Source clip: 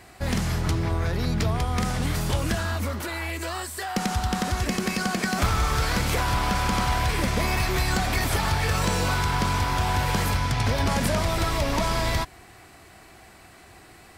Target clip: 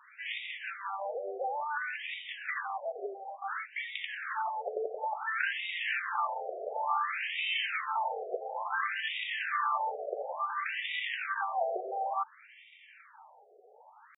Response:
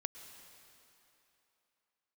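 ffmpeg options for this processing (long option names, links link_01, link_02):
-af "asetrate=52444,aresample=44100,atempo=0.840896,bandreject=frequency=50:width_type=h:width=6,bandreject=frequency=100:width_type=h:width=6,bandreject=frequency=150:width_type=h:width=6,bandreject=frequency=200:width_type=h:width=6,afftfilt=real='re*between(b*sr/1024,530*pow(2700/530,0.5+0.5*sin(2*PI*0.57*pts/sr))/1.41,530*pow(2700/530,0.5+0.5*sin(2*PI*0.57*pts/sr))*1.41)':imag='im*between(b*sr/1024,530*pow(2700/530,0.5+0.5*sin(2*PI*0.57*pts/sr))/1.41,530*pow(2700/530,0.5+0.5*sin(2*PI*0.57*pts/sr))*1.41)':win_size=1024:overlap=0.75"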